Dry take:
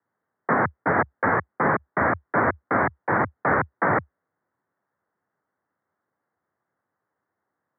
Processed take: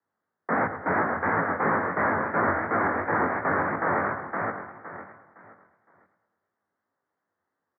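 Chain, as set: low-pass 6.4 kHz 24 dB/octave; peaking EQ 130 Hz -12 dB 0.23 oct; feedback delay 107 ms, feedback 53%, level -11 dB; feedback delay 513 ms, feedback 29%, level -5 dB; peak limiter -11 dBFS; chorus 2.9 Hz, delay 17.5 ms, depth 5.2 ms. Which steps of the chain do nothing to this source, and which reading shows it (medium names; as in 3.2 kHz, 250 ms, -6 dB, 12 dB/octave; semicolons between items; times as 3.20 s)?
low-pass 6.4 kHz: input has nothing above 2.4 kHz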